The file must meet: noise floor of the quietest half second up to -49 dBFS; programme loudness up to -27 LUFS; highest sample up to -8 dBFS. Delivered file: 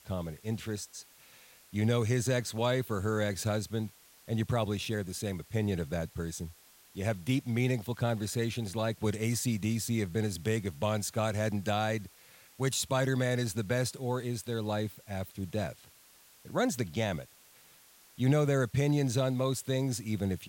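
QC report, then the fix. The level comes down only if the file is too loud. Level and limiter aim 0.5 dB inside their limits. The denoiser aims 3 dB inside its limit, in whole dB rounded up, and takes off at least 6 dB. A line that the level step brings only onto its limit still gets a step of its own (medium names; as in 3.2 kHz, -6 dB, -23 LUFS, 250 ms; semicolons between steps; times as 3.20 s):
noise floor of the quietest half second -60 dBFS: pass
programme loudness -32.5 LUFS: pass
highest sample -16.0 dBFS: pass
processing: none needed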